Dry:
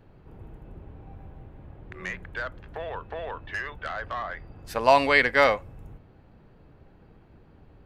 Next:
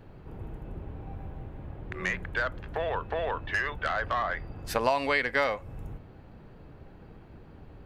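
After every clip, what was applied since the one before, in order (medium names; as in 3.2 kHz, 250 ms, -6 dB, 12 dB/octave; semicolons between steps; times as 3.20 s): compression 5:1, threshold -28 dBFS, peak gain reduction 14 dB; trim +4.5 dB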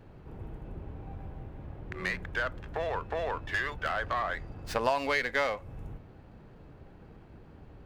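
sliding maximum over 3 samples; trim -2 dB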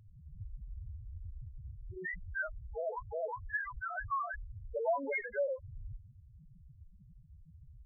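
loudest bins only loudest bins 2; trim +1 dB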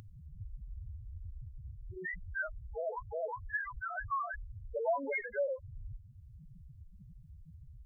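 upward compressor, threshold -47 dBFS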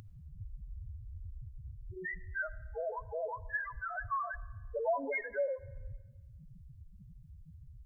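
algorithmic reverb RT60 1.3 s, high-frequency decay 1×, pre-delay 30 ms, DRR 18.5 dB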